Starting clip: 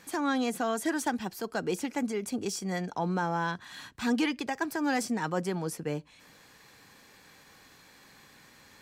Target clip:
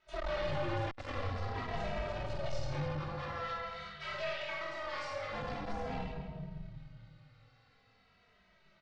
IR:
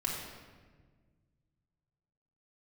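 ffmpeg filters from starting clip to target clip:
-filter_complex "[0:a]aeval=exprs='val(0)*sin(2*PI*330*n/s)':c=same,aecho=1:1:20|45|76.25|115.3|164.1:0.631|0.398|0.251|0.158|0.1,agate=range=0.282:threshold=0.00447:ratio=16:detection=peak,asettb=1/sr,asplit=3[s0][s1][s2];[s0]atrim=end=2.934[s3];[s1]atrim=start=2.93:end=5.32,asetpts=PTS-STARTPTS,afade=t=in:d=0.004:c=qsin,afade=t=out:st=2.386:d=0.004:c=qsin,highpass=f=1500:p=1[s4];[s2]atrim=start=5.316[s5];[s3][s4]acrossfade=d=0.004:c1=hsin:c2=qsin[s6];[s6][s5]acrossfade=d=0.004:c1=qsin:c2=hsin,acrusher=bits=3:mode=log:mix=0:aa=0.000001[s7];[1:a]atrim=start_sample=2205,asetrate=41454,aresample=44100[s8];[s7][s8]afir=irnorm=-1:irlink=0,aeval=exprs='(tanh(35.5*val(0)+0.4)-tanh(0.4))/35.5':c=same,lowpass=f=4600:w=0.5412,lowpass=f=4600:w=1.3066,asplit=2[s9][s10];[s10]adelay=2.7,afreqshift=-0.46[s11];[s9][s11]amix=inputs=2:normalize=1"

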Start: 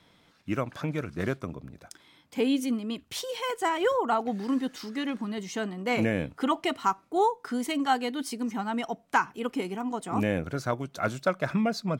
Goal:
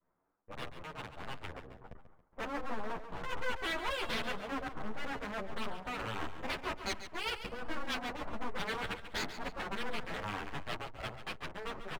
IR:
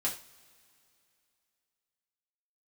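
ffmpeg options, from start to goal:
-filter_complex "[0:a]adynamicequalizer=threshold=0.0158:dfrequency=600:dqfactor=0.96:tfrequency=600:tqfactor=0.96:attack=5:release=100:ratio=0.375:range=2.5:mode=boostabove:tftype=bell,acrusher=bits=4:mode=log:mix=0:aa=0.000001,areverse,acompressor=threshold=0.0251:ratio=6,areverse,asoftclip=type=tanh:threshold=0.0531,highpass=f=430:p=1,aeval=exprs='0.0562*(cos(1*acos(clip(val(0)/0.0562,-1,1)))-cos(1*PI/2))+0.00282*(cos(4*acos(clip(val(0)/0.0562,-1,1)))-cos(4*PI/2))+0.00891*(cos(7*acos(clip(val(0)/0.0562,-1,1)))-cos(7*PI/2))+0.00794*(cos(8*acos(clip(val(0)/0.0562,-1,1)))-cos(8*PI/2))':c=same,lowpass=f=1300:w=0.5412,lowpass=f=1300:w=1.3066,aeval=exprs='0.0112*(abs(mod(val(0)/0.0112+3,4)-2)-1)':c=same,aecho=1:1:139|278|417|556:0.282|0.107|0.0407|0.0155,dynaudnorm=f=210:g=17:m=1.68,asplit=2[s0][s1];[s1]adelay=9.4,afreqshift=1.4[s2];[s0][s2]amix=inputs=2:normalize=1,volume=2.51"

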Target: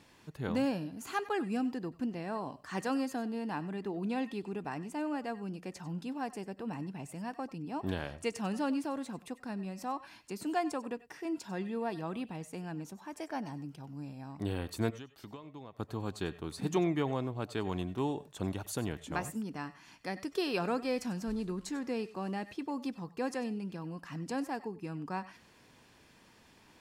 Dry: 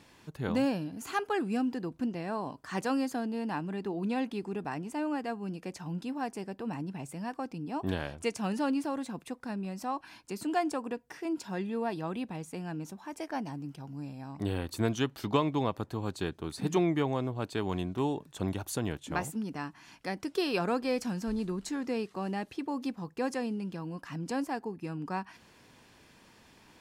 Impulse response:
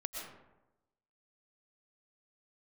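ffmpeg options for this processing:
-filter_complex "[0:a]asplit=3[s0][s1][s2];[s0]afade=t=out:st=14.89:d=0.02[s3];[s1]acompressor=threshold=0.00794:ratio=10,afade=t=in:st=14.89:d=0.02,afade=t=out:st=15.78:d=0.02[s4];[s2]afade=t=in:st=15.78:d=0.02[s5];[s3][s4][s5]amix=inputs=3:normalize=0[s6];[1:a]atrim=start_sample=2205,atrim=end_sample=4410[s7];[s6][s7]afir=irnorm=-1:irlink=0"

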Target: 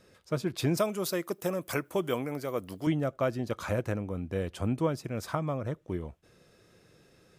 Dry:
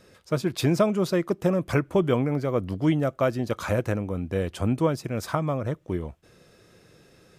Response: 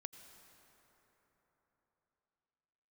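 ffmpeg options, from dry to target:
-filter_complex "[0:a]asettb=1/sr,asplit=3[s0][s1][s2];[s0]atrim=end=0.774[s3];[s1]atrim=start=0.77:end=2.87,asetpts=PTS-STARTPTS,afade=t=in:d=0.004:c=qsin,afade=t=out:st=2.096:d=0.004:c=qsin,aemphasis=mode=production:type=bsi[s4];[s2]atrim=start=2.866[s5];[s3][s4]acrossfade=d=0.004:c1=hsin:c2=qsin[s6];[s6][s5]acrossfade=d=0.004:c1=qsin:c2=hsin[s7];[1:a]atrim=start_sample=2205,atrim=end_sample=3528[s8];[s7][s8]afir=irnorm=-1:irlink=0"

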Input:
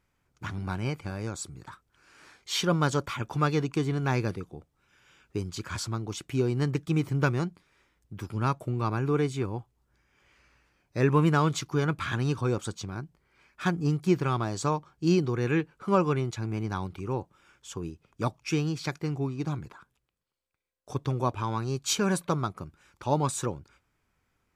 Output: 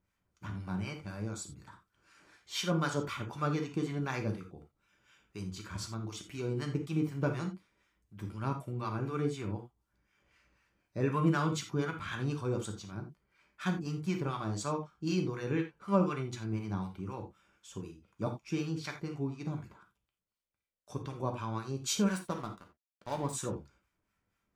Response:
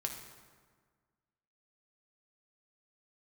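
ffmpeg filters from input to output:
-filter_complex "[0:a]asettb=1/sr,asplit=3[s0][s1][s2];[s0]atrim=end=22.064[s3];[s1]atrim=start=22.06:end=23.33,asetpts=PTS-STARTPTS,afade=t=in:d=0.004:c=qsin,afade=t=out:st=1.266:d=0.004:c=qsin,aeval=exprs='sgn(val(0))*max(abs(val(0))-0.0133,0)':c=same[s4];[s2]atrim=start=23.326[s5];[s3][s4]acrossfade=d=0.004:c1=hsin:c2=qsin[s6];[s6][s5]acrossfade=d=0.004:c1=qsin:c2=hsin,acrossover=split=860[s7][s8];[s7]aeval=exprs='val(0)*(1-0.7/2+0.7/2*cos(2*PI*4*n/s))':c=same[s9];[s8]aeval=exprs='val(0)*(1-0.7/2-0.7/2*cos(2*PI*4*n/s))':c=same[s10];[s9][s10]amix=inputs=2:normalize=0[s11];[1:a]atrim=start_sample=2205,afade=t=out:st=0.19:d=0.01,atrim=end_sample=8820,asetrate=66150,aresample=44100[s12];[s11][s12]afir=irnorm=-1:irlink=0"

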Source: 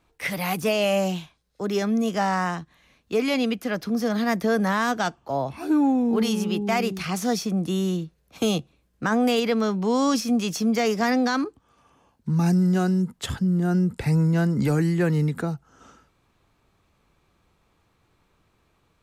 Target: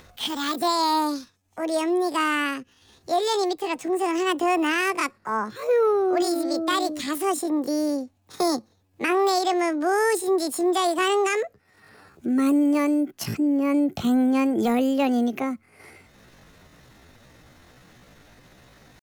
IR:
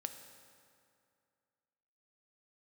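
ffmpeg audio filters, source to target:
-af "acompressor=mode=upward:threshold=0.0126:ratio=2.5,asetrate=70004,aresample=44100,atempo=0.629961"

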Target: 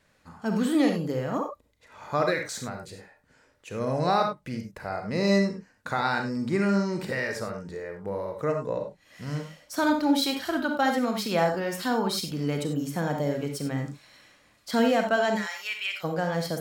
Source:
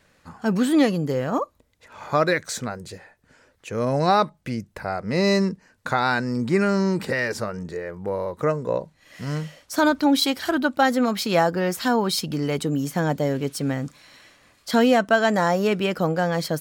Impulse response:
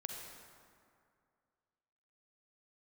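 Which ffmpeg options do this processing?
-filter_complex "[0:a]asplit=3[s0][s1][s2];[s0]afade=t=out:st=15.35:d=0.02[s3];[s1]highpass=f=2300:t=q:w=2,afade=t=in:st=15.35:d=0.02,afade=t=out:st=16.03:d=0.02[s4];[s2]afade=t=in:st=16.03:d=0.02[s5];[s3][s4][s5]amix=inputs=3:normalize=0[s6];[1:a]atrim=start_sample=2205,atrim=end_sample=6174,asetrate=57330,aresample=44100[s7];[s6][s7]afir=irnorm=-1:irlink=0"

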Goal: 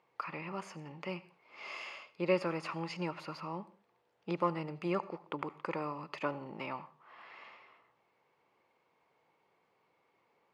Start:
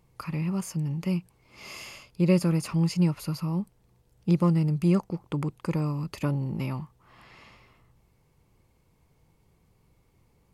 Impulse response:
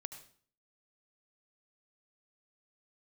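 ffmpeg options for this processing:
-filter_complex "[0:a]highpass=570,lowpass=2600,asplit=2[s0][s1];[1:a]atrim=start_sample=2205,afade=t=out:st=0.26:d=0.01,atrim=end_sample=11907[s2];[s1][s2]afir=irnorm=-1:irlink=0,volume=0.75[s3];[s0][s3]amix=inputs=2:normalize=0,volume=0.841"

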